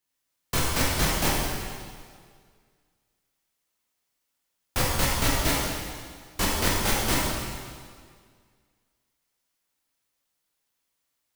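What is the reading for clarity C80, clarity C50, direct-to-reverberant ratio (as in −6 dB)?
0.5 dB, −1.5 dB, −5.0 dB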